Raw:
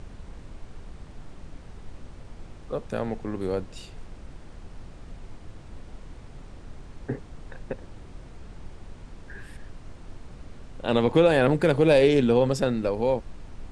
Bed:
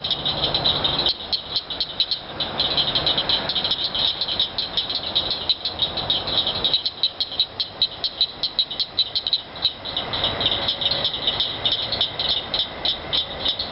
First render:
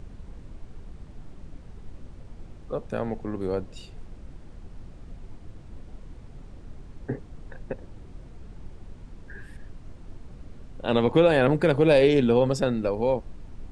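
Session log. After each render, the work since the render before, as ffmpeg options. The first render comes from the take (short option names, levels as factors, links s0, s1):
-af "afftdn=nr=6:nf=-46"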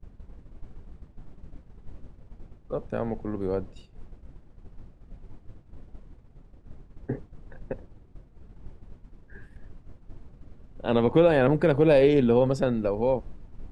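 -af "agate=range=0.0224:threshold=0.02:ratio=3:detection=peak,highshelf=f=2500:g=-8.5"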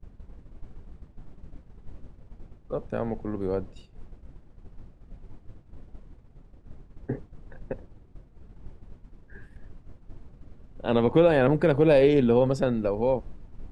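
-af anull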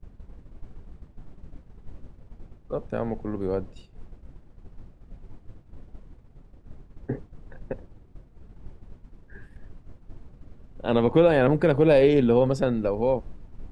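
-af "volume=1.12"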